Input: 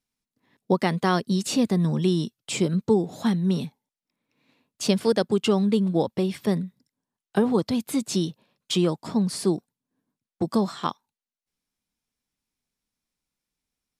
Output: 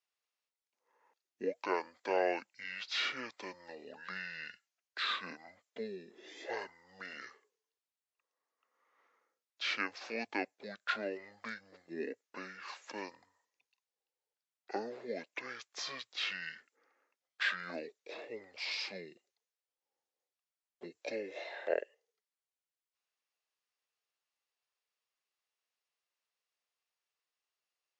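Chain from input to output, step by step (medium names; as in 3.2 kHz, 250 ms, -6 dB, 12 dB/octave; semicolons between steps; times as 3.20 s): high-pass 820 Hz 24 dB/octave; speed mistake 15 ips tape played at 7.5 ips; trim -5.5 dB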